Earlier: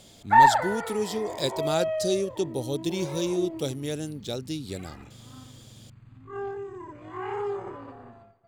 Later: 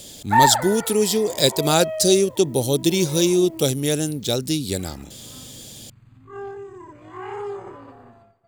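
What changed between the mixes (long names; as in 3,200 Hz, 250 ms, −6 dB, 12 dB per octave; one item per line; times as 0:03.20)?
speech +9.5 dB
master: add high-shelf EQ 7,000 Hz +11 dB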